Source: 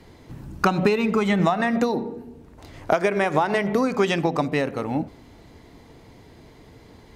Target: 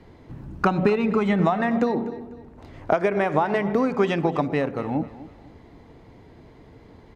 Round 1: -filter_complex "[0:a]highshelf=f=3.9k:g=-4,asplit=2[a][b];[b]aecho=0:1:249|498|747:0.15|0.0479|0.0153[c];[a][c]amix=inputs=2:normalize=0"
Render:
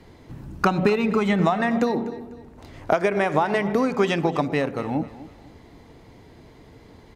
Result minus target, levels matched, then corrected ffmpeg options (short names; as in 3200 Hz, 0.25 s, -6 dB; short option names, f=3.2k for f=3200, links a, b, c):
8000 Hz band +8.0 dB
-filter_complex "[0:a]highshelf=f=3.9k:g=-15,asplit=2[a][b];[b]aecho=0:1:249|498|747:0.15|0.0479|0.0153[c];[a][c]amix=inputs=2:normalize=0"